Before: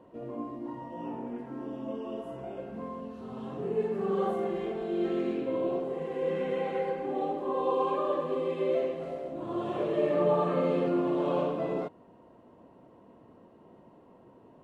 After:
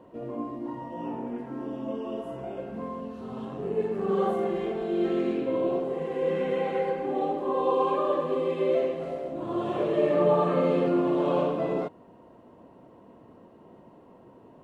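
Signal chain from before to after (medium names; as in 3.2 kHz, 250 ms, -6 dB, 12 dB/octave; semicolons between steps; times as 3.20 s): 3.45–4.09 s: AM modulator 99 Hz, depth 25%; trim +3.5 dB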